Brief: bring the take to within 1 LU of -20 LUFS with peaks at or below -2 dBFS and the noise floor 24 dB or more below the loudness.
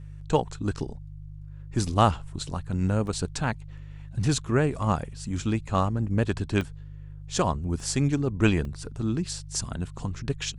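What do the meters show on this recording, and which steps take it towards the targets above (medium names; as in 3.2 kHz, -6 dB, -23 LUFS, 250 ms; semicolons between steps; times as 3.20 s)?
dropouts 4; longest dropout 1.7 ms; hum 50 Hz; highest harmonic 150 Hz; hum level -40 dBFS; loudness -28.0 LUFS; peak level -5.0 dBFS; loudness target -20.0 LUFS
-> interpolate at 3.07/6.61/7.80/8.65 s, 1.7 ms; de-hum 50 Hz, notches 3; trim +8 dB; peak limiter -2 dBFS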